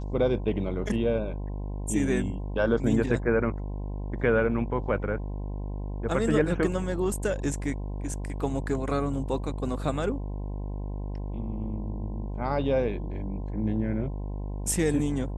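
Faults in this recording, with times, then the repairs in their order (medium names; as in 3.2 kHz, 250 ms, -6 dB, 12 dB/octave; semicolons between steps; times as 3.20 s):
buzz 50 Hz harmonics 21 -33 dBFS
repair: de-hum 50 Hz, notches 21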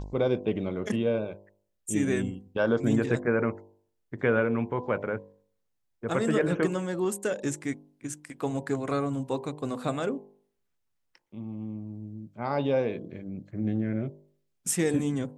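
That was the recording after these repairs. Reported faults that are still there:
nothing left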